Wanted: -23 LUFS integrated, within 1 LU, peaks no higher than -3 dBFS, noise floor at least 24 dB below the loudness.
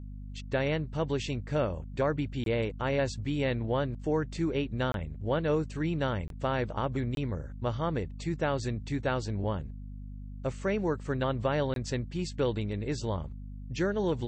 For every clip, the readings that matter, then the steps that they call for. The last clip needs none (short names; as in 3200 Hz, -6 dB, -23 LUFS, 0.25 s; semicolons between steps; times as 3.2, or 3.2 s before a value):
dropouts 5; longest dropout 22 ms; hum 50 Hz; harmonics up to 250 Hz; hum level -39 dBFS; loudness -31.5 LUFS; peak -16.0 dBFS; loudness target -23.0 LUFS
-> interpolate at 2.44/4.92/6.28/7.15/11.74, 22 ms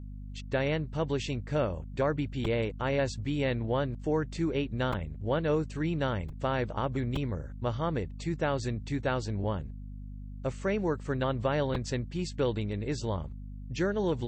dropouts 0; hum 50 Hz; harmonics up to 250 Hz; hum level -39 dBFS
-> de-hum 50 Hz, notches 5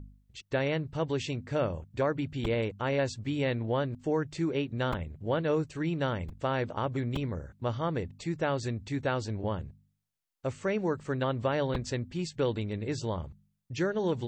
hum none; loudness -32.0 LUFS; peak -16.5 dBFS; loudness target -23.0 LUFS
-> gain +9 dB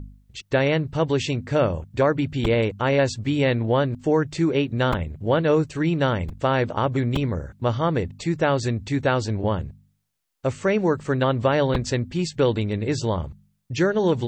loudness -23.0 LUFS; peak -7.5 dBFS; noise floor -66 dBFS